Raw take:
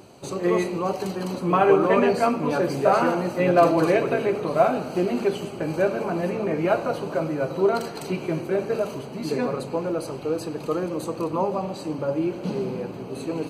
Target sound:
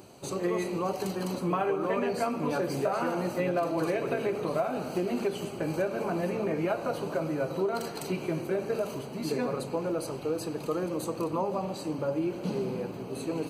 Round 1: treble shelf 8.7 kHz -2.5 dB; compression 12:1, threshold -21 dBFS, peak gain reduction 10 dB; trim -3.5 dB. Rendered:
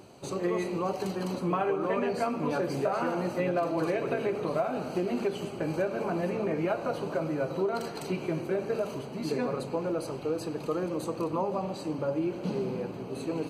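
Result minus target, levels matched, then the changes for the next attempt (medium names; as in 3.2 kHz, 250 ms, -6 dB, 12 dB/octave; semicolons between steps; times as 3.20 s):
8 kHz band -4.0 dB
change: treble shelf 8.7 kHz +7.5 dB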